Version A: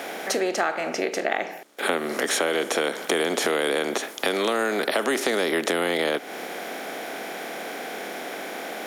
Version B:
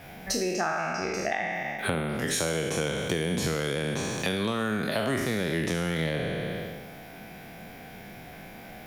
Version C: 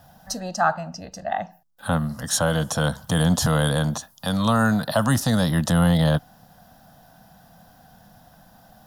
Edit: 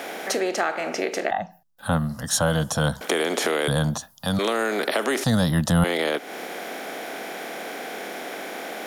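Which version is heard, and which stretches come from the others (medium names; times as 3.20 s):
A
1.31–3.01 s: from C
3.68–4.39 s: from C
5.24–5.84 s: from C
not used: B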